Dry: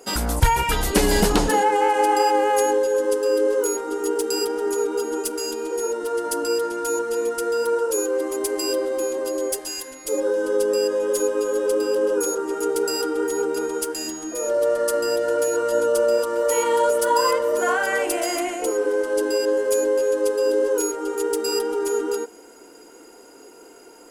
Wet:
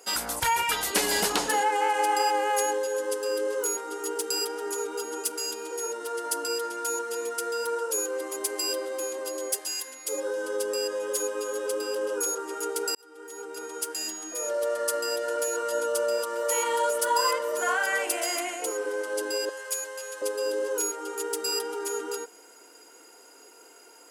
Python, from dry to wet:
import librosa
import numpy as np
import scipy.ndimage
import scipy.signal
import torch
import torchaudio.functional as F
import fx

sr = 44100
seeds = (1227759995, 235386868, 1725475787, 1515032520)

y = fx.highpass(x, sr, hz=1000.0, slope=12, at=(19.49, 20.22))
y = fx.edit(y, sr, fx.fade_in_span(start_s=12.95, length_s=1.13), tone=tone)
y = fx.highpass(y, sr, hz=1100.0, slope=6)
y = y * 10.0 ** (-1.0 / 20.0)